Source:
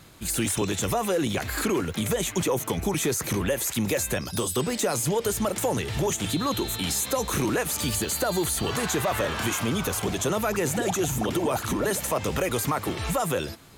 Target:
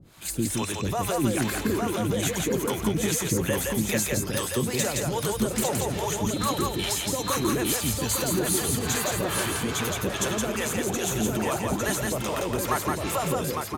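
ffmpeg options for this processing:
ffmpeg -i in.wav -filter_complex "[0:a]asplit=2[link_01][link_02];[link_02]aecho=0:1:855:0.596[link_03];[link_01][link_03]amix=inputs=2:normalize=0,acrossover=split=510[link_04][link_05];[link_04]aeval=exprs='val(0)*(1-1/2+1/2*cos(2*PI*2.4*n/s))':channel_layout=same[link_06];[link_05]aeval=exprs='val(0)*(1-1/2-1/2*cos(2*PI*2.4*n/s))':channel_layout=same[link_07];[link_06][link_07]amix=inputs=2:normalize=0,asplit=2[link_08][link_09];[link_09]aecho=0:1:169:0.708[link_10];[link_08][link_10]amix=inputs=2:normalize=0,volume=1.5dB" out.wav

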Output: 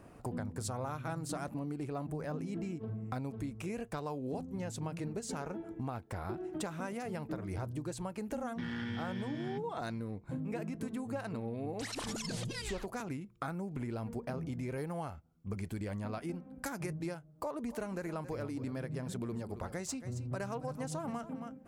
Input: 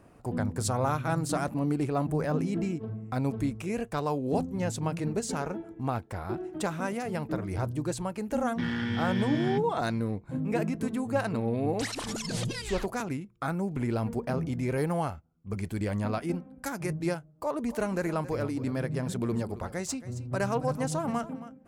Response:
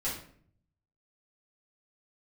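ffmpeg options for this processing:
-af "acompressor=threshold=-37dB:ratio=6,volume=1dB"

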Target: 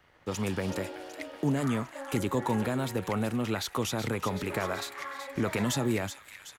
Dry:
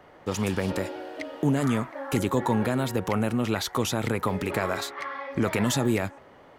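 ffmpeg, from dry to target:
ffmpeg -i in.wav -filter_complex "[0:a]acrossover=split=130|1500[link_01][link_02][link_03];[link_02]aeval=exprs='sgn(val(0))*max(abs(val(0))-0.00237,0)':channel_layout=same[link_04];[link_03]asplit=8[link_05][link_06][link_07][link_08][link_09][link_10][link_11][link_12];[link_06]adelay=376,afreqshift=-47,volume=-9dB[link_13];[link_07]adelay=752,afreqshift=-94,volume=-13.6dB[link_14];[link_08]adelay=1128,afreqshift=-141,volume=-18.2dB[link_15];[link_09]adelay=1504,afreqshift=-188,volume=-22.7dB[link_16];[link_10]adelay=1880,afreqshift=-235,volume=-27.3dB[link_17];[link_11]adelay=2256,afreqshift=-282,volume=-31.9dB[link_18];[link_12]adelay=2632,afreqshift=-329,volume=-36.5dB[link_19];[link_05][link_13][link_14][link_15][link_16][link_17][link_18][link_19]amix=inputs=8:normalize=0[link_20];[link_01][link_04][link_20]amix=inputs=3:normalize=0,volume=-4dB" out.wav

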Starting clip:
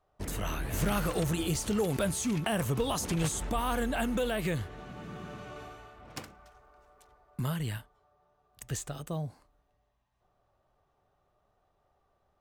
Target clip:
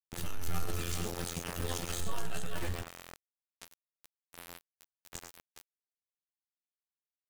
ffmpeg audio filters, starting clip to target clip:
ffmpeg -i in.wav -filter_complex "[0:a]equalizer=frequency=610:width=0.33:gain=-8,afreqshift=-34,flanger=delay=5.3:depth=8.5:regen=17:speed=0.28:shape=sinusoidal,afftfilt=real='hypot(re,im)*cos(PI*b)':imag='0':win_size=2048:overlap=0.75,adynamicequalizer=threshold=0.00126:dfrequency=100:dqfactor=5.1:tfrequency=100:tqfactor=5.1:attack=5:release=100:ratio=0.375:range=1.5:mode=cutabove:tftype=bell,asplit=2[link_01][link_02];[link_02]asetrate=22050,aresample=44100,atempo=2,volume=-5dB[link_03];[link_01][link_03]amix=inputs=2:normalize=0,aecho=1:1:58|90|174|183|230|733:0.266|0.188|0.335|0.112|0.224|0.447,aeval=exprs='val(0)*gte(abs(val(0)),0.0188)':channel_layout=same,atempo=1.7,volume=1dB" out.wav

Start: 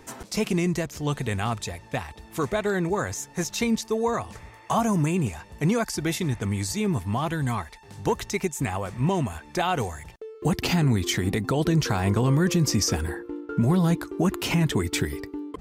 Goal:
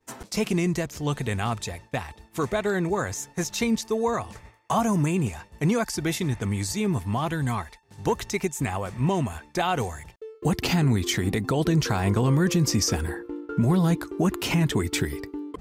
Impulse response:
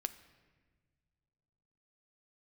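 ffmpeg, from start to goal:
-af "agate=range=-33dB:threshold=-38dB:ratio=3:detection=peak"

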